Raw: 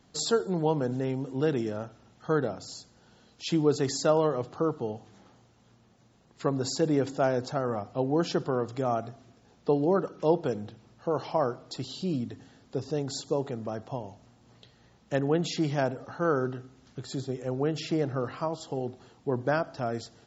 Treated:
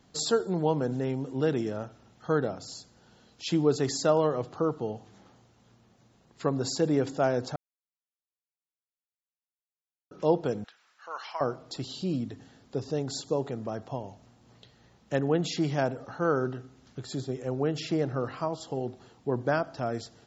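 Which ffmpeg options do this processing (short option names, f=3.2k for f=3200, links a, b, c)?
-filter_complex "[0:a]asettb=1/sr,asplit=3[a][b][c];[a]atrim=end=10.644[d];[b]atrim=start=10.64:end=11.41,asetpts=PTS-STARTPTS,afade=t=in:d=0.004:c=qsin,afade=t=out:st=0.766:d=0.004:c=qsin,highpass=f=1.5k:t=q:w=2.1[e];[c]atrim=start=11.406[f];[d][e]acrossfade=d=0.004:c1=hsin:c2=qsin[g];[g][f]acrossfade=d=0.004:c1=qsin:c2=hsin,asplit=3[h][i][j];[h]atrim=end=7.56,asetpts=PTS-STARTPTS,afade=t=out:st=7.556:d=0.004:c=hsin[k];[i]atrim=start=7.56:end=10.11,asetpts=PTS-STARTPTS,volume=0[l];[j]atrim=start=10.11,asetpts=PTS-STARTPTS,afade=t=in:d=0.004:c=hsin[m];[k][l][m]concat=n=3:v=0:a=1"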